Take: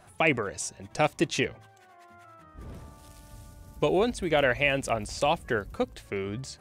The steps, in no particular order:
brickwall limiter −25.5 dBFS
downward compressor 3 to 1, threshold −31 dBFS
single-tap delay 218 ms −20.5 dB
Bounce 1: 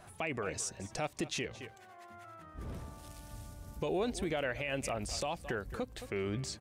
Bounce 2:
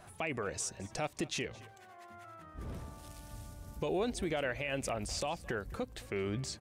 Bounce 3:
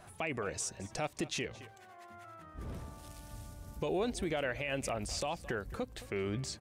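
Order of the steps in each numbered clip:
single-tap delay, then downward compressor, then brickwall limiter
downward compressor, then brickwall limiter, then single-tap delay
downward compressor, then single-tap delay, then brickwall limiter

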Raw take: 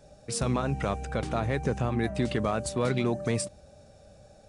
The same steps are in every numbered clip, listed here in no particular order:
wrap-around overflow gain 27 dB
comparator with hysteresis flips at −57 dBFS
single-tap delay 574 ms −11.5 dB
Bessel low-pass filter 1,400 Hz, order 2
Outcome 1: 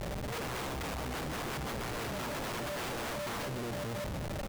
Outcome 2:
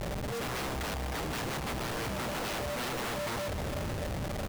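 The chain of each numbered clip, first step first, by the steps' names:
single-tap delay, then wrap-around overflow, then Bessel low-pass filter, then comparator with hysteresis
Bessel low-pass filter, then wrap-around overflow, then comparator with hysteresis, then single-tap delay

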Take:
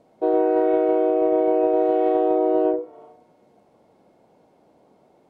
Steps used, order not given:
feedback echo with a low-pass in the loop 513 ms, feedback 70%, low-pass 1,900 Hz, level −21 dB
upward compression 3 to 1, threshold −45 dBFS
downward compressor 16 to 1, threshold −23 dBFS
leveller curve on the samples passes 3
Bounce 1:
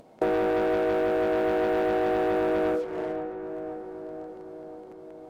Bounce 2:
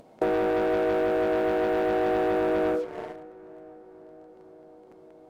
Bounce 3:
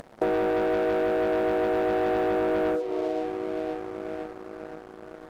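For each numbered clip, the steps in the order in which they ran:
leveller curve on the samples, then upward compression, then feedback echo with a low-pass in the loop, then downward compressor
leveller curve on the samples, then downward compressor, then feedback echo with a low-pass in the loop, then upward compression
feedback echo with a low-pass in the loop, then upward compression, then leveller curve on the samples, then downward compressor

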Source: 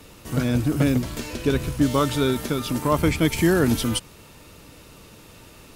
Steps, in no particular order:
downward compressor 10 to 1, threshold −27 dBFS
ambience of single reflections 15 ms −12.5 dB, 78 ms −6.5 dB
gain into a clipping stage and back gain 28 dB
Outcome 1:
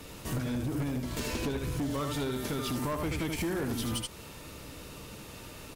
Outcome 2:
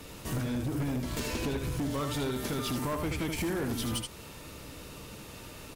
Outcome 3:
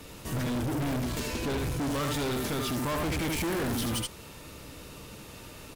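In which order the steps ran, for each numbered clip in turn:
ambience of single reflections, then downward compressor, then gain into a clipping stage and back
downward compressor, then ambience of single reflections, then gain into a clipping stage and back
ambience of single reflections, then gain into a clipping stage and back, then downward compressor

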